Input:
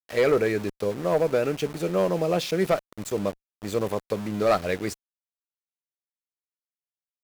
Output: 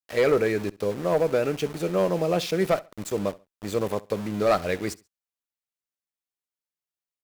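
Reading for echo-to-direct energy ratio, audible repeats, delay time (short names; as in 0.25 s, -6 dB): -21.0 dB, 2, 68 ms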